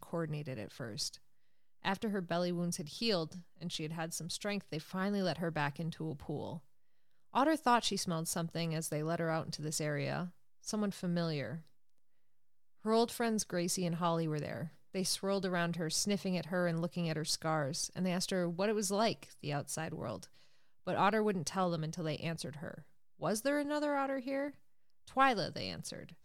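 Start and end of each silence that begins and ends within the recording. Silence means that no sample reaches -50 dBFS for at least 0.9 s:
11.67–12.84

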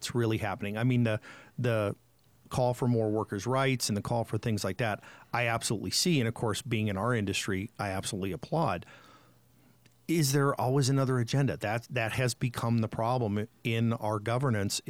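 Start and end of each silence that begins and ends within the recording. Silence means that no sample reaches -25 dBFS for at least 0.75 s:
8.76–10.09

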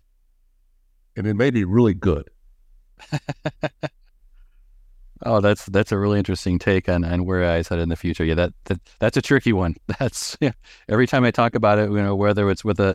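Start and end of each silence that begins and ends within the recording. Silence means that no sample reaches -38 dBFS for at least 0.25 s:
2.28–3
3.88–5.17

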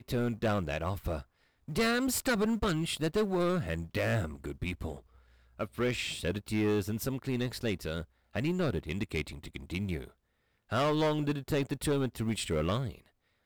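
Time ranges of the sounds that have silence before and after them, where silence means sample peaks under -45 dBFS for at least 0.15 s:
1.68–5
5.59–8.04
8.35–10.09
10.71–13.06

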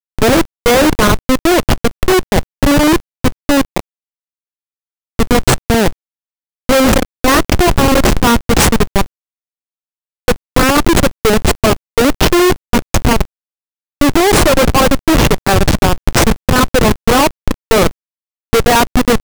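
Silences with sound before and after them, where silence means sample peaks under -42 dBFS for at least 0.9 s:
3.8–5.19
9.06–10.28

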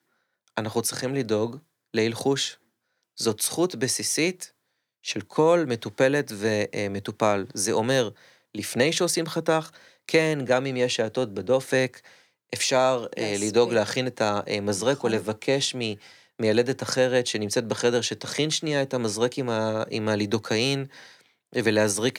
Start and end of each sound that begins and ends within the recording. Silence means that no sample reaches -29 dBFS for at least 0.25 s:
0.57–1.55
1.94–2.51
3.19–4.44
5.06–8.09
8.55–9.66
10.09–11.94
12.53–15.93
16.4–20.83

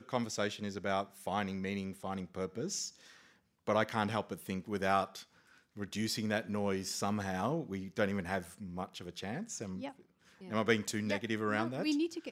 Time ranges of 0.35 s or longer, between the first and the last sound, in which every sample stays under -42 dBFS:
2.89–3.67
5.22–5.77
9.9–10.43

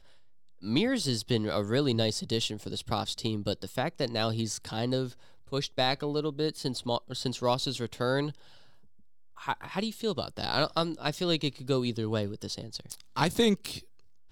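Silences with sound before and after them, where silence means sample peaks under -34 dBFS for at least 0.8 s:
8.3–9.44

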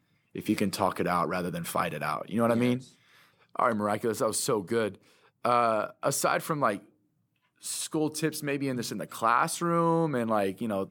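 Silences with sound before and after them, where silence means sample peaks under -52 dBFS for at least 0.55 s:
6.89–7.61

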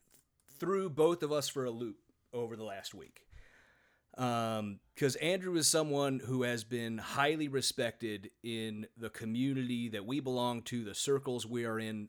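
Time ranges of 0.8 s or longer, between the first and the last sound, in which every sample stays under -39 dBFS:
3.17–4.18

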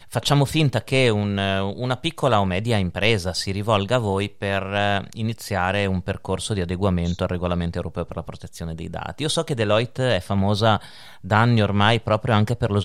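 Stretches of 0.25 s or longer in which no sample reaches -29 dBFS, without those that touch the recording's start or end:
10.86–11.24

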